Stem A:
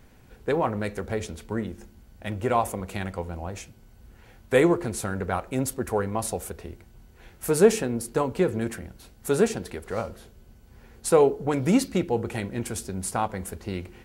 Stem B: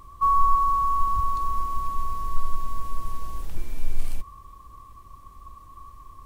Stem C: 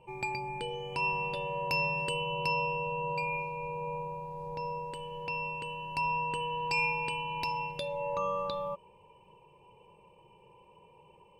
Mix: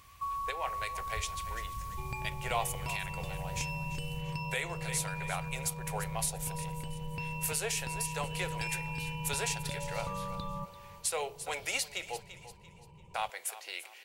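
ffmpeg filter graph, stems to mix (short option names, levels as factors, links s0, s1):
-filter_complex "[0:a]highpass=f=600:w=0.5412,highpass=f=600:w=1.3066,highshelf=f=1800:t=q:w=1.5:g=8.5,volume=0.473,asplit=3[s0][s1][s2];[s0]atrim=end=12.2,asetpts=PTS-STARTPTS,afade=t=out:st=12.196:d=0.004:c=hsin[s3];[s1]atrim=start=12.2:end=13.14,asetpts=PTS-STARTPTS,volume=0[s4];[s2]atrim=start=13.14,asetpts=PTS-STARTPTS,afade=t=in:d=0.004:c=hsin[s5];[s3][s4][s5]concat=n=3:v=0:a=1,asplit=2[s6][s7];[s7]volume=0.178[s8];[1:a]highpass=110,equalizer=f=520:w=0.32:g=-14.5,volume=0.944[s9];[2:a]adelay=1900,volume=0.841,asplit=2[s10][s11];[s11]volume=0.141[s12];[s9][s10]amix=inputs=2:normalize=0,asubboost=boost=7.5:cutoff=170,acompressor=threshold=0.02:ratio=6,volume=1[s13];[s8][s12]amix=inputs=2:normalize=0,aecho=0:1:341|682|1023|1364|1705:1|0.35|0.122|0.0429|0.015[s14];[s6][s13][s14]amix=inputs=3:normalize=0,alimiter=limit=0.0944:level=0:latency=1:release=298"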